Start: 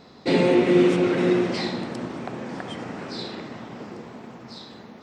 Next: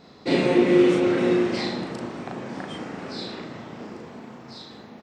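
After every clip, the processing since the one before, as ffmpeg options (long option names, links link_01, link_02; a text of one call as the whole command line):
ffmpeg -i in.wav -filter_complex "[0:a]asplit=2[link_01][link_02];[link_02]adelay=37,volume=-2dB[link_03];[link_01][link_03]amix=inputs=2:normalize=0,volume=-2.5dB" out.wav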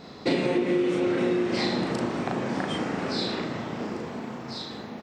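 ffmpeg -i in.wav -af "acompressor=threshold=-27dB:ratio=8,volume=5.5dB" out.wav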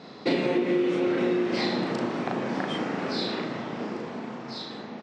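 ffmpeg -i in.wav -af "highpass=150,lowpass=5700" out.wav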